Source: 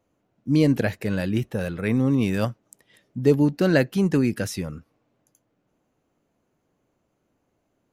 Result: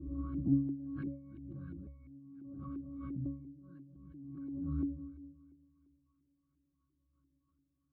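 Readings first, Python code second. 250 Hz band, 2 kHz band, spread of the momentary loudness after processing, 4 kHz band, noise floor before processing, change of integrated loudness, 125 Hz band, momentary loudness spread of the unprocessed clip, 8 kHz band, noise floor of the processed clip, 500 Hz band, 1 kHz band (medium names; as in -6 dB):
-15.0 dB, under -30 dB, 22 LU, under -40 dB, -73 dBFS, -17.0 dB, -16.5 dB, 10 LU, under -35 dB, -81 dBFS, -33.5 dB, -22.0 dB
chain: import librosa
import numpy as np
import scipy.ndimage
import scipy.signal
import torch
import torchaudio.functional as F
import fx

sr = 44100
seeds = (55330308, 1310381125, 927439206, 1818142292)

y = fx.reverse_delay_fb(x, sr, ms=103, feedback_pct=59, wet_db=-9.5)
y = fx.graphic_eq(y, sr, hz=(125, 500, 1000, 2000, 4000, 8000), db=(-11, -12, -7, -4, 11, 6))
y = 10.0 ** (-15.5 / 20.0) * np.tanh(y / 10.0 ** (-15.5 / 20.0))
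y = fx.fixed_phaser(y, sr, hz=2300.0, stages=6)
y = fx.notch_comb(y, sr, f0_hz=880.0)
y = fx.rev_spring(y, sr, rt60_s=2.3, pass_ms=(39,), chirp_ms=75, drr_db=14.0)
y = fx.gate_flip(y, sr, shuts_db=-23.0, range_db=-32)
y = fx.rider(y, sr, range_db=4, speed_s=0.5)
y = fx.octave_resonator(y, sr, note='C#', decay_s=0.59)
y = fx.filter_lfo_lowpass(y, sr, shape='saw_up', hz=2.9, low_hz=330.0, high_hz=1900.0, q=3.5)
y = fx.low_shelf(y, sr, hz=110.0, db=10.0)
y = fx.pre_swell(y, sr, db_per_s=27.0)
y = y * 10.0 ** (12.0 / 20.0)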